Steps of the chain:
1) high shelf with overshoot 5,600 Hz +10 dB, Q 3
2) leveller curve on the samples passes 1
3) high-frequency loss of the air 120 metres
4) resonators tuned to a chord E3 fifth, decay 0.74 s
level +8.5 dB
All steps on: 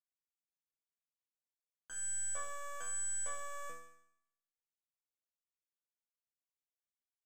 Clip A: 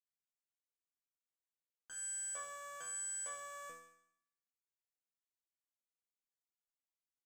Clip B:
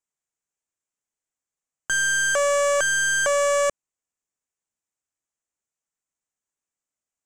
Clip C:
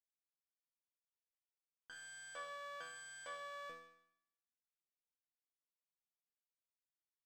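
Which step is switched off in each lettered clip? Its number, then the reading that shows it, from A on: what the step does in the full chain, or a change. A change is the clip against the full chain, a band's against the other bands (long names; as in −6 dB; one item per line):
2, change in integrated loudness −2.5 LU
4, 8 kHz band −15.0 dB
1, 8 kHz band −17.5 dB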